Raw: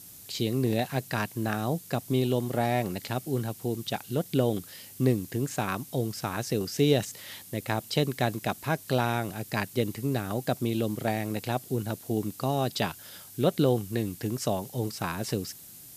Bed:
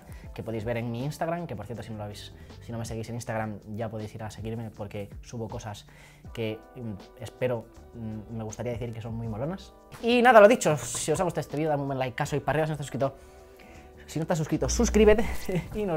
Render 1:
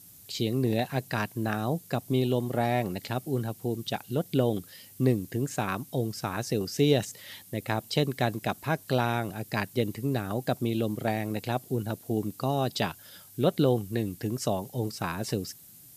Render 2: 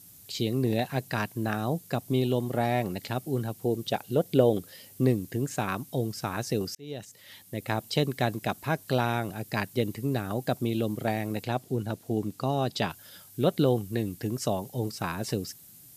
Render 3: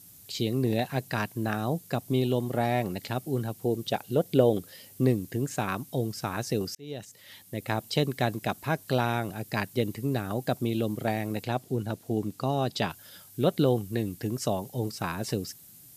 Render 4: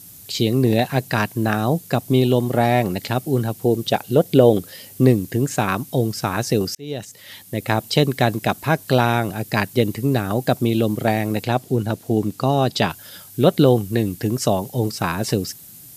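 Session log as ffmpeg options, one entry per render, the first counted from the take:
ffmpeg -i in.wav -af "afftdn=noise_reduction=6:noise_floor=-48" out.wav
ffmpeg -i in.wav -filter_complex "[0:a]asettb=1/sr,asplit=3[link_01][link_02][link_03];[link_01]atrim=end=3.644[link_04];[link_02]atrim=start=3.64:end=5.06,asetpts=PTS-STARTPTS,afade=type=in:duration=0.004:curve=qsin,afade=type=out:start_time=1.416:duration=0.004:curve=qsin,equalizer=frequency=520:width_type=o:width=1.1:gain=6.5[link_05];[link_03]atrim=start=5.056[link_06];[link_04][link_05]acrossfade=duration=0.004:curve1=hsin:curve2=qsin[link_07];[link_07][link_06]acrossfade=duration=0.004:curve1=qsin:curve2=hsin,asettb=1/sr,asplit=3[link_08][link_09][link_10];[link_08]atrim=end=11.444[link_11];[link_09]atrim=start=11.44:end=12.9,asetpts=PTS-STARTPTS,afade=type=in:duration=0.004:curve=qsin,afade=type=out:start_time=1.456:duration=0.004:curve=qsin,highshelf=frequency=11000:gain=-10[link_12];[link_10]atrim=start=12.896[link_13];[link_11][link_12]acrossfade=duration=0.004:curve1=hsin:curve2=qsin[link_14];[link_14][link_13]acrossfade=duration=0.004:curve1=qsin:curve2=hsin,asplit=2[link_15][link_16];[link_15]atrim=end=6.75,asetpts=PTS-STARTPTS,afade=type=out:start_time=6.746:duration=0.004:curve=hsin[link_17];[link_16]atrim=start=6.75,asetpts=PTS-STARTPTS,afade=type=in:duration=0.98[link_18];[link_17][link_18]concat=n=2:v=0:a=1" out.wav
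ffmpeg -i in.wav -af anull out.wav
ffmpeg -i in.wav -af "volume=9.5dB,alimiter=limit=-1dB:level=0:latency=1" out.wav

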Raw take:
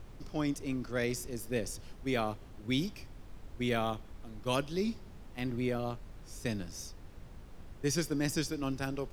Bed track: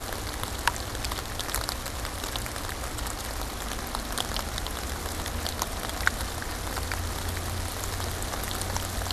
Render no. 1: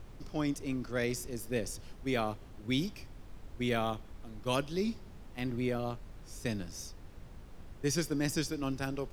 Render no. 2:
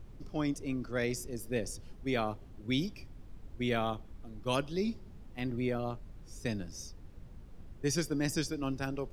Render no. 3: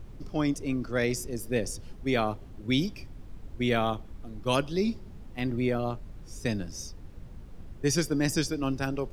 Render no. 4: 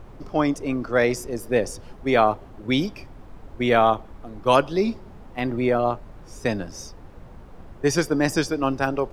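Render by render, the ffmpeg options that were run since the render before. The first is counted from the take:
ffmpeg -i in.wav -af anull out.wav
ffmpeg -i in.wav -af "afftdn=noise_reduction=7:noise_floor=-51" out.wav
ffmpeg -i in.wav -af "volume=5.5dB" out.wav
ffmpeg -i in.wav -af "equalizer=frequency=870:width=0.49:gain=12.5" out.wav

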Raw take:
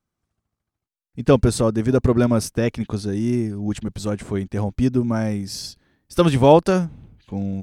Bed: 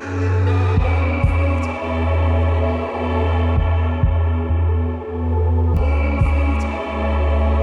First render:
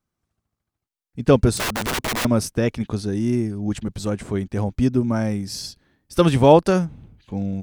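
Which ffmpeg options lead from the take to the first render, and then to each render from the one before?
ffmpeg -i in.wav -filter_complex "[0:a]asettb=1/sr,asplit=3[link_01][link_02][link_03];[link_01]atrim=end=1.574[link_04];[link_02]atrim=start=1.57:end=2.25,asetpts=PTS-STARTPTS,afade=type=in:duration=0.004:curve=qsin,afade=type=out:start_time=0.676:duration=0.004:curve=qsin,aeval=exprs='(mod(8.91*val(0)+1,2)-1)/8.91':channel_layout=same[link_05];[link_03]atrim=start=2.246[link_06];[link_04][link_05]acrossfade=duration=0.004:curve1=hsin:curve2=qsin[link_07];[link_07][link_06]acrossfade=duration=0.004:curve1=qsin:curve2=hsin" out.wav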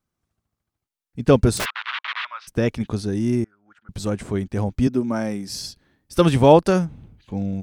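ffmpeg -i in.wav -filter_complex "[0:a]asplit=3[link_01][link_02][link_03];[link_01]afade=type=out:start_time=1.64:duration=0.02[link_04];[link_02]asuperpass=centerf=2000:order=8:qfactor=0.76,afade=type=in:start_time=1.64:duration=0.02,afade=type=out:start_time=2.47:duration=0.02[link_05];[link_03]afade=type=in:start_time=2.47:duration=0.02[link_06];[link_04][link_05][link_06]amix=inputs=3:normalize=0,asettb=1/sr,asplit=3[link_07][link_08][link_09];[link_07]atrim=end=3.444[link_10];[link_08]atrim=start=3.44:end=3.89,asetpts=PTS-STARTPTS,afade=type=in:duration=0.004:curve=qsin,afade=type=out:start_time=0.446:duration=0.004:curve=qsin,bandpass=frequency=1400:width_type=q:width=11[link_11];[link_09]atrim=start=3.886[link_12];[link_10][link_11]acrossfade=duration=0.004:curve1=hsin:curve2=qsin[link_13];[link_13][link_12]acrossfade=duration=0.004:curve1=qsin:curve2=hsin,asettb=1/sr,asplit=3[link_14][link_15][link_16];[link_14]atrim=end=4.874[link_17];[link_15]atrim=start=4.87:end=5.5,asetpts=PTS-STARTPTS,afade=type=in:duration=0.004:curve=qsin,afade=type=out:start_time=0.626:duration=0.004:curve=qsin,highpass=200[link_18];[link_16]atrim=start=5.496[link_19];[link_17][link_18]acrossfade=duration=0.004:curve1=hsin:curve2=qsin[link_20];[link_20][link_19]acrossfade=duration=0.004:curve1=qsin:curve2=hsin" out.wav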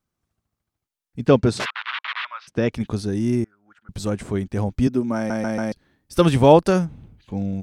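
ffmpeg -i in.wav -filter_complex "[0:a]asettb=1/sr,asplit=3[link_01][link_02][link_03];[link_01]atrim=end=1.274[link_04];[link_02]atrim=start=1.27:end=2.73,asetpts=PTS-STARTPTS,afade=type=in:duration=0.004:curve=qsin,afade=type=out:start_time=1.456:duration=0.004:curve=qsin,highpass=110,lowpass=5500[link_05];[link_03]atrim=start=2.726[link_06];[link_04][link_05]acrossfade=duration=0.004:curve1=hsin:curve2=qsin[link_07];[link_07][link_06]acrossfade=duration=0.004:curve1=qsin:curve2=hsin,asplit=5[link_08][link_09][link_10][link_11][link_12];[link_08]atrim=end=5.302[link_13];[link_09]atrim=start=5.158:end=5.302[link_14];[link_10]atrim=start=5.158:end=5.302[link_15];[link_11]atrim=start=5.158:end=5.302[link_16];[link_12]atrim=start=5.718[link_17];[link_13][link_14]acrossfade=duration=0.004:curve1=hsin:curve2=hsin[link_18];[link_18][link_15]acrossfade=duration=0.004:curve1=hsin:curve2=hsin[link_19];[link_19][link_16]acrossfade=duration=0.004:curve1=hsin:curve2=hsin[link_20];[link_20][link_17]acrossfade=duration=0.004:curve1=hsin:curve2=hsin" out.wav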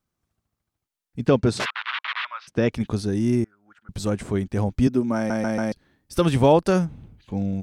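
ffmpeg -i in.wav -af "alimiter=limit=-6.5dB:level=0:latency=1:release=304" out.wav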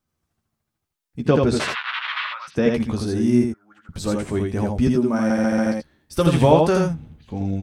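ffmpeg -i in.wav -filter_complex "[0:a]asplit=2[link_01][link_02];[link_02]adelay=13,volume=-7dB[link_03];[link_01][link_03]amix=inputs=2:normalize=0,aecho=1:1:58|82:0.133|0.708" out.wav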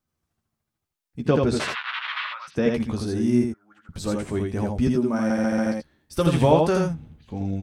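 ffmpeg -i in.wav -af "volume=-3dB" out.wav

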